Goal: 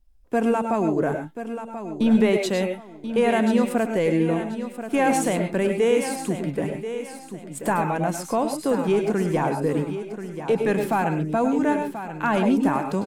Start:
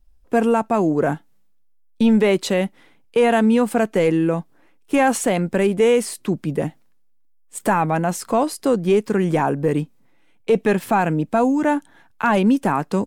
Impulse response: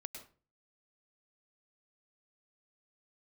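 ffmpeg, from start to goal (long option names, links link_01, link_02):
-filter_complex "[0:a]bandreject=frequency=1300:width=26,aecho=1:1:1034|2068|3102:0.299|0.0866|0.0251[link_01];[1:a]atrim=start_sample=2205,atrim=end_sample=6174[link_02];[link_01][link_02]afir=irnorm=-1:irlink=0"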